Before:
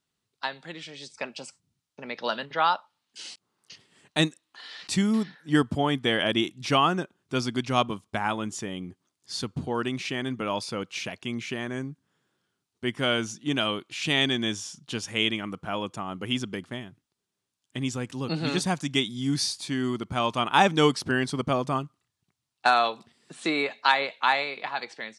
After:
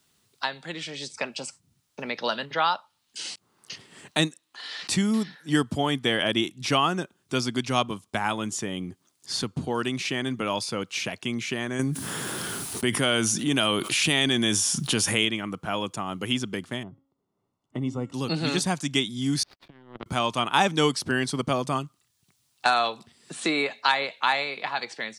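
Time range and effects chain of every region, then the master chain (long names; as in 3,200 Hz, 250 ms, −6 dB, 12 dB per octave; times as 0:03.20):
0:11.79–0:15.25: parametric band 10,000 Hz +11.5 dB 0.37 octaves + envelope flattener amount 70%
0:16.83–0:18.14: Savitzky-Golay smoothing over 65 samples + hum removal 273.2 Hz, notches 39
0:19.43–0:20.06: compressor whose output falls as the input rises −33 dBFS + power curve on the samples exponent 3 + high-frequency loss of the air 370 metres
whole clip: high-shelf EQ 6,200 Hz +7.5 dB; multiband upward and downward compressor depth 40%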